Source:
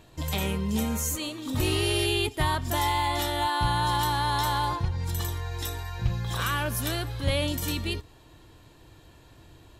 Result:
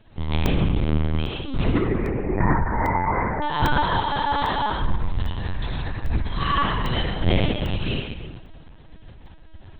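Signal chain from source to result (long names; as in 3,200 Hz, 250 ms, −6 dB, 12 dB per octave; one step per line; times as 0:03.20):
0:01.64–0:03.43: Butterworth low-pass 2,200 Hz 96 dB per octave
low-shelf EQ 140 Hz +10 dB
mains-hum notches 60/120/180/240/300/360 Hz
0:06.35–0:07.05: comb filter 1 ms, depth 80%
fake sidechain pumping 90 BPM, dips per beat 1, −7 dB, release 217 ms
delay with a band-pass on its return 65 ms, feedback 53%, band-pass 600 Hz, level −20.5 dB
convolution reverb RT60 1.2 s, pre-delay 53 ms, DRR −1.5 dB
linear-prediction vocoder at 8 kHz pitch kept
regular buffer underruns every 0.80 s, samples 64, zero, from 0:00.46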